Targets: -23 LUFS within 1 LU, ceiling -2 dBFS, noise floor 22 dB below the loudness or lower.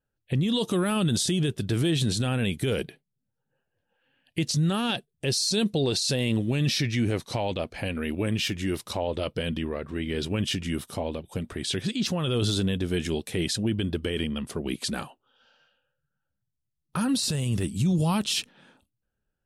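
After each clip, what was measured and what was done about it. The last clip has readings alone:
loudness -27.5 LUFS; peak level -15.5 dBFS; loudness target -23.0 LUFS
-> trim +4.5 dB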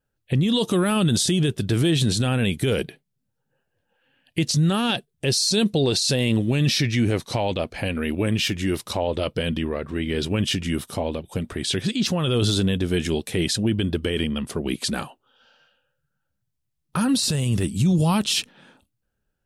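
loudness -23.0 LUFS; peak level -11.0 dBFS; noise floor -77 dBFS

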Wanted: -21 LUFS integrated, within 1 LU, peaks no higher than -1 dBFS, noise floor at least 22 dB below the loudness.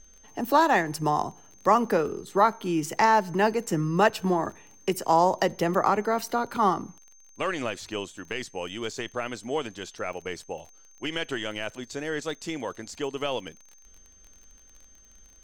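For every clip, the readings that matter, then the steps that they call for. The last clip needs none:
tick rate 28 per s; steady tone 6.3 kHz; tone level -54 dBFS; loudness -27.0 LUFS; peak level -8.5 dBFS; loudness target -21.0 LUFS
-> de-click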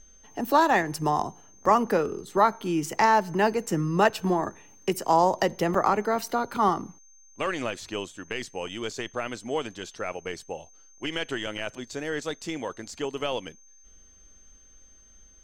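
tick rate 0 per s; steady tone 6.3 kHz; tone level -54 dBFS
-> band-stop 6.3 kHz, Q 30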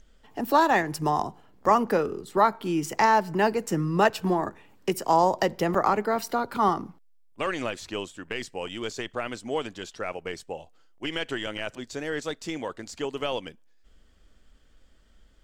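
steady tone not found; loudness -27.0 LUFS; peak level -8.5 dBFS; loudness target -21.0 LUFS
-> trim +6 dB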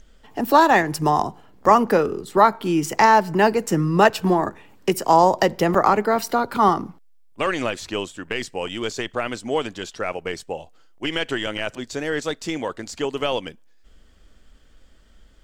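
loudness -21.0 LUFS; peak level -2.5 dBFS; noise floor -52 dBFS

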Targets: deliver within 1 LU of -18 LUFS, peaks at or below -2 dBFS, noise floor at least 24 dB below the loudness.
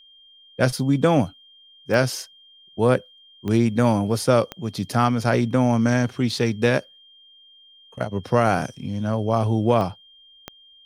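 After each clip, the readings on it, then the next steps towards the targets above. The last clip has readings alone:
clicks found 5; steady tone 3.2 kHz; tone level -49 dBFS; loudness -22.0 LUFS; peak level -4.0 dBFS; loudness target -18.0 LUFS
-> de-click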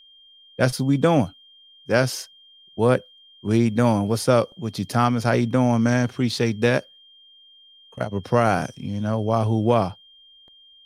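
clicks found 0; steady tone 3.2 kHz; tone level -49 dBFS
-> band-stop 3.2 kHz, Q 30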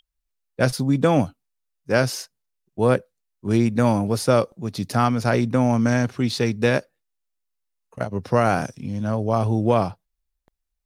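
steady tone not found; loudness -22.0 LUFS; peak level -4.0 dBFS; loudness target -18.0 LUFS
-> trim +4 dB; peak limiter -2 dBFS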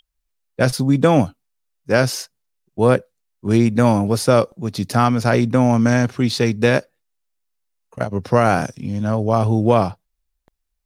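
loudness -18.0 LUFS; peak level -2.0 dBFS; noise floor -75 dBFS

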